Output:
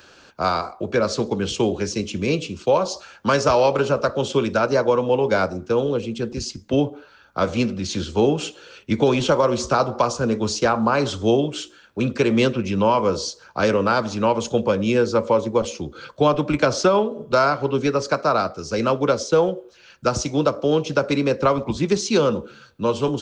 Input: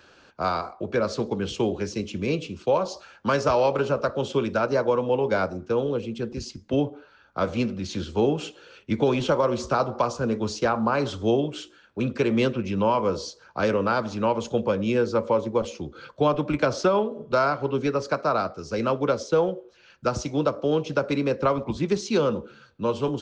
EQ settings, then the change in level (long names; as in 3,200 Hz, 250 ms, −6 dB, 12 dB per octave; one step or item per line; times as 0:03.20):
high-shelf EQ 5,900 Hz +10 dB
+4.0 dB